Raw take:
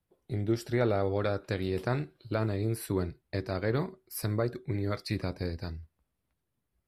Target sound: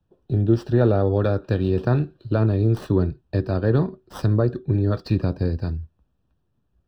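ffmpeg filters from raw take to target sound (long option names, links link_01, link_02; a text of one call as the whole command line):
ffmpeg -i in.wav -filter_complex "[0:a]asuperstop=centerf=2100:order=12:qfactor=4.2,lowshelf=frequency=480:gain=10,acrossover=split=270|5300[link_01][link_02][link_03];[link_03]acrusher=samples=19:mix=1:aa=0.000001[link_04];[link_01][link_02][link_04]amix=inputs=3:normalize=0,volume=3dB" out.wav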